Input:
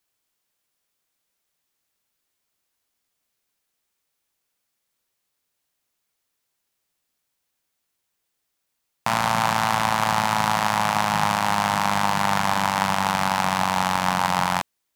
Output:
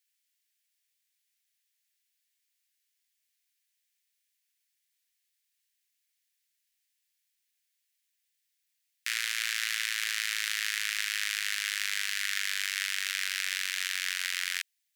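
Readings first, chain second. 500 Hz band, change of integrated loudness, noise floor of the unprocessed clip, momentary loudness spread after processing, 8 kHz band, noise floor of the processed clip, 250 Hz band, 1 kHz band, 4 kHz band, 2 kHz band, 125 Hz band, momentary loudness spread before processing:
below −40 dB, −8.5 dB, −78 dBFS, 1 LU, −2.0 dB, −80 dBFS, below −40 dB, −29.5 dB, −2.0 dB, −4.5 dB, below −40 dB, 1 LU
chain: Butterworth high-pass 1,700 Hz 48 dB per octave
level −2 dB

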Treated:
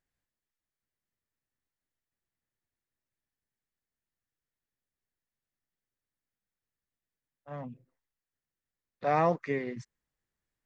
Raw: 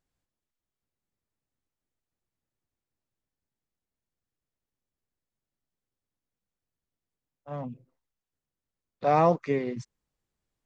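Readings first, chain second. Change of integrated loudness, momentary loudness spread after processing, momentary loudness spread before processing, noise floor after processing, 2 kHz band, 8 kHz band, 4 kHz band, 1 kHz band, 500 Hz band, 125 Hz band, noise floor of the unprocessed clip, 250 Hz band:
−3.5 dB, 19 LU, 18 LU, below −85 dBFS, +1.0 dB, can't be measured, −4.5 dB, −4.5 dB, −5.0 dB, −5.0 dB, below −85 dBFS, −5.0 dB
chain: parametric band 1,800 Hz +8.5 dB 0.59 octaves
level −5 dB

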